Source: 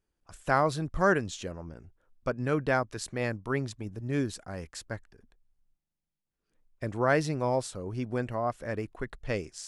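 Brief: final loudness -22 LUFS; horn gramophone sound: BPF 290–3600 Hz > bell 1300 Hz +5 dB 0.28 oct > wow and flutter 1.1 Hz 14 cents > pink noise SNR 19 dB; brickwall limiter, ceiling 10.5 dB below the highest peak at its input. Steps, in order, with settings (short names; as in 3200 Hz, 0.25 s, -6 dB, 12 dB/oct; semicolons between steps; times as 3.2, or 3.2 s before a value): limiter -21 dBFS; BPF 290–3600 Hz; bell 1300 Hz +5 dB 0.28 oct; wow and flutter 1.1 Hz 14 cents; pink noise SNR 19 dB; gain +14 dB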